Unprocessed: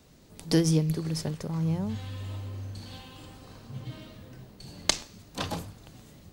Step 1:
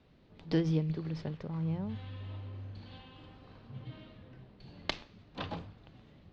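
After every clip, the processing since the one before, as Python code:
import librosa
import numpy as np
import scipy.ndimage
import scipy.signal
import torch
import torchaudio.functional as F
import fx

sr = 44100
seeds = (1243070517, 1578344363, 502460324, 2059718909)

y = scipy.signal.sosfilt(scipy.signal.butter(4, 3700.0, 'lowpass', fs=sr, output='sos'), x)
y = y * librosa.db_to_amplitude(-6.0)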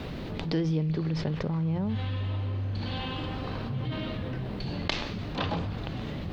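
y = fx.env_flatten(x, sr, amount_pct=70)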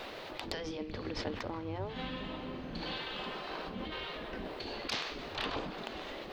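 y = fx.spec_gate(x, sr, threshold_db=-10, keep='weak')
y = np.clip(y, -10.0 ** (-24.0 / 20.0), 10.0 ** (-24.0 / 20.0))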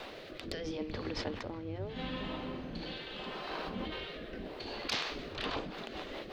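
y = fx.rotary_switch(x, sr, hz=0.75, then_hz=5.5, switch_at_s=5.02)
y = y * librosa.db_to_amplitude(2.0)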